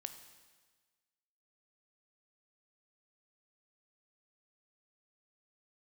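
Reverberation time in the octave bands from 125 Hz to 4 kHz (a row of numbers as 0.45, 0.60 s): 1.4, 1.4, 1.4, 1.4, 1.4, 1.4 s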